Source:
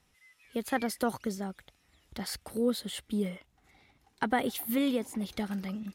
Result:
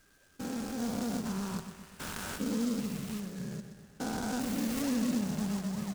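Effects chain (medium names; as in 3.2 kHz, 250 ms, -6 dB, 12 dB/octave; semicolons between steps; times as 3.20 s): spectrogram pixelated in time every 400 ms; hum notches 60/120/180 Hz; time-frequency box 1.25–2.38 s, 870–4100 Hz +11 dB; in parallel at -5 dB: decimation with a swept rate 42×, swing 60% 3.4 Hz; on the sum: formant shift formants -4 st; on a send: feedback delay 125 ms, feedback 55%, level -10 dB; on the sum: delay time shaken by noise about 5.5 kHz, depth 0.072 ms; trim +1.5 dB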